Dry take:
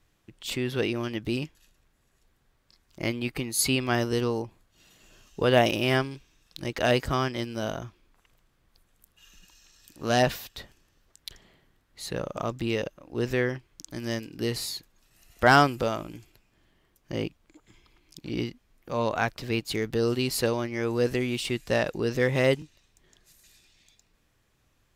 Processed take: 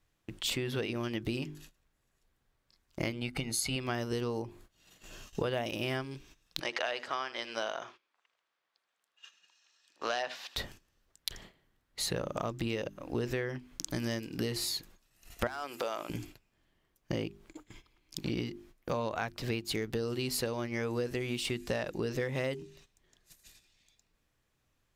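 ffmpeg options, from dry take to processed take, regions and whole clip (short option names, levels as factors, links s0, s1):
-filter_complex "[0:a]asettb=1/sr,asplit=3[s0][s1][s2];[s0]atrim=end=3.124[s3];[s1]atrim=start=3.12:end=3.76,asetpts=PTS-STARTPTS,afade=t=in:d=0.004:c=qsin,afade=t=out:st=0.636:d=0.004:c=qsin,lowpass=11000,tremolo=f=120:d=0.519,aecho=1:1:1.4:0.45,atrim=end_sample=28224[s4];[s2]atrim=start=3.756[s5];[s3][s4]acrossfade=d=0.004:c1=hsin:c2=qsin[s6];[s6][s5]acrossfade=d=0.004:c1=qsin:c2=hsin,asettb=1/sr,asplit=3[s7][s8][s9];[s7]atrim=end=6.604[s10];[s8]atrim=start=6.6:end=10.56,asetpts=PTS-STARTPTS,afade=t=in:d=0.004:c=qsin,afade=t=out:st=3.956:d=0.004:c=qsin,highpass=690,lowpass=5000,aecho=1:1:78:0.106,atrim=end_sample=174636[s11];[s9]atrim=start=10.556[s12];[s10][s11]acrossfade=d=0.004:c1=hsin:c2=qsin[s13];[s13][s12]acrossfade=d=0.004:c1=qsin:c2=hsin,asettb=1/sr,asplit=3[s14][s15][s16];[s14]atrim=end=15.474[s17];[s15]atrim=start=15.47:end=16.1,asetpts=PTS-STARTPTS,afade=t=in:d=0.004:c=qsin,afade=t=out:st=0.626:d=0.004:c=qsin,highpass=510,acompressor=threshold=0.0251:ratio=2:attack=3.2:release=140:knee=1:detection=peak,volume=14.1,asoftclip=hard,volume=0.0708[s18];[s16]atrim=start=16.096[s19];[s17][s18]acrossfade=d=0.004:c1=hsin:c2=qsin[s20];[s20][s19]acrossfade=d=0.004:c1=qsin:c2=hsin,bandreject=f=50:t=h:w=6,bandreject=f=100:t=h:w=6,bandreject=f=150:t=h:w=6,bandreject=f=200:t=h:w=6,bandreject=f=250:t=h:w=6,bandreject=f=300:t=h:w=6,bandreject=f=350:t=h:w=6,bandreject=f=400:t=h:w=6,agate=range=0.178:threshold=0.00158:ratio=16:detection=peak,acompressor=threshold=0.0126:ratio=12,volume=2.37"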